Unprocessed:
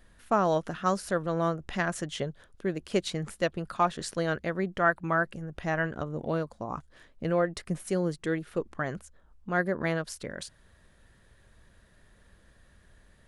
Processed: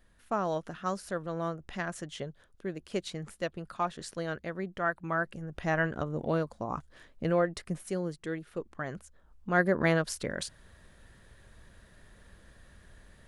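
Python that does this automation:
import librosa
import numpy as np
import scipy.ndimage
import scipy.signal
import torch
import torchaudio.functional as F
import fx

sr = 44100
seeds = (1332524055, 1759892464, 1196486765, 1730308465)

y = fx.gain(x, sr, db=fx.line((4.94, -6.0), (5.71, 0.5), (7.24, 0.5), (8.13, -6.0), (8.7, -6.0), (9.77, 3.5)))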